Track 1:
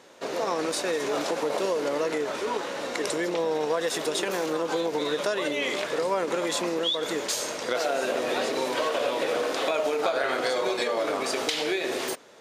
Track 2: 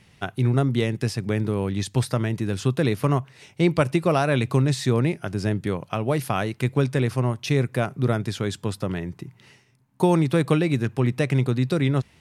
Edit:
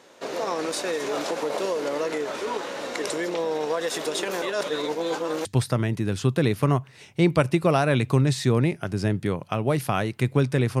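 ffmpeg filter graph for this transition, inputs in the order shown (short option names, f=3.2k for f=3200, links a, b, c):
-filter_complex "[0:a]apad=whole_dur=10.8,atrim=end=10.8,asplit=2[a][b];[a]atrim=end=4.422[c];[b]atrim=start=4.418:end=5.452,asetpts=PTS-STARTPTS,areverse[d];[1:a]atrim=start=1.858:end=7.21[e];[c][d]acrossfade=d=0.004:c1=hsin:c2=hsin[f];[f][e]acrossfade=d=0.004:c1=hsin:c2=hsin"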